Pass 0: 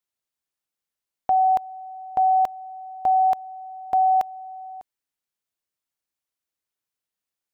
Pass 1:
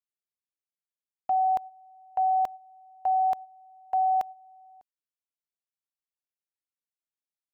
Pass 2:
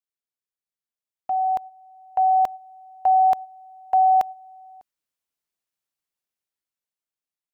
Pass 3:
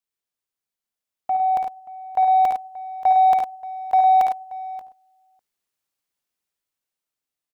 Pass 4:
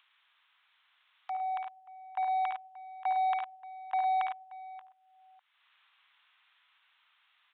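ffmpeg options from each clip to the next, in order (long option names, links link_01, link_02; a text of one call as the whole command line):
ffmpeg -i in.wav -af "agate=range=-10dB:threshold=-31dB:ratio=16:detection=peak,volume=-5.5dB" out.wav
ffmpeg -i in.wav -af "dynaudnorm=framelen=530:gausssize=7:maxgain=9.5dB,volume=-2dB" out.wav
ffmpeg -i in.wav -filter_complex "[0:a]asplit=2[link_01][link_02];[link_02]asoftclip=type=tanh:threshold=-21dB,volume=-8.5dB[link_03];[link_01][link_03]amix=inputs=2:normalize=0,aecho=1:1:56|71|95|105|109|580:0.422|0.447|0.126|0.299|0.2|0.126" out.wav
ffmpeg -i in.wav -af "asuperpass=centerf=2400:order=8:qfactor=0.51,aresample=8000,aresample=44100,acompressor=mode=upward:threshold=-45dB:ratio=2.5,volume=-2dB" out.wav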